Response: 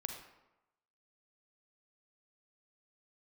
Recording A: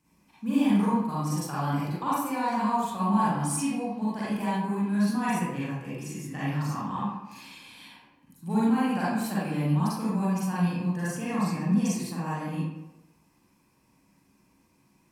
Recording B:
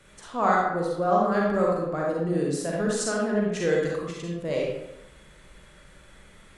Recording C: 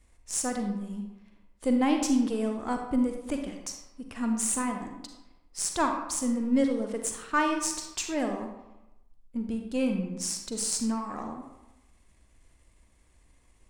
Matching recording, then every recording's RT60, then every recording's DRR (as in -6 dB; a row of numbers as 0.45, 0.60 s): C; 0.95, 0.95, 0.95 s; -9.5, -3.5, 4.0 dB